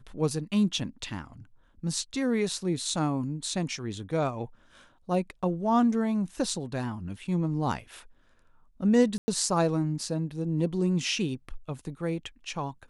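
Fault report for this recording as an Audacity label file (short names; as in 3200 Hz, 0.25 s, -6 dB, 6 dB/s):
9.180000	9.280000	gap 0.1 s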